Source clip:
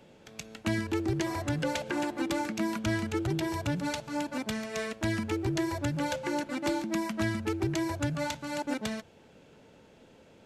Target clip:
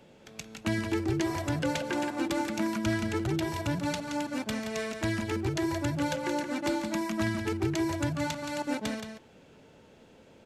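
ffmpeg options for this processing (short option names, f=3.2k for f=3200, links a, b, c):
-af "aecho=1:1:173:0.422"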